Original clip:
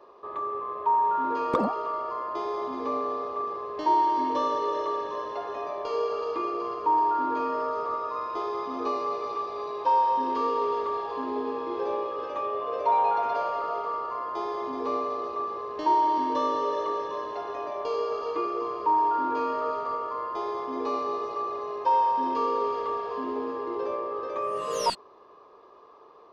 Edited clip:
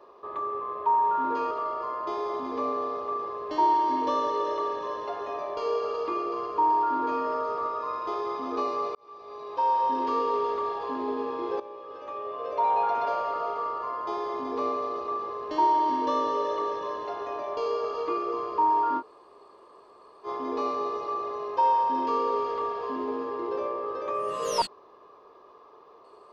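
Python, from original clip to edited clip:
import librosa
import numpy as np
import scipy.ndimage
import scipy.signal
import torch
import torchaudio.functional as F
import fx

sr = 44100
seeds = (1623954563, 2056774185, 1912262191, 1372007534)

y = fx.edit(x, sr, fx.cut(start_s=1.51, length_s=0.28),
    fx.fade_in_span(start_s=9.23, length_s=0.95),
    fx.fade_in_from(start_s=11.88, length_s=1.36, floor_db=-15.0),
    fx.room_tone_fill(start_s=19.28, length_s=1.26, crossfade_s=0.06), tone=tone)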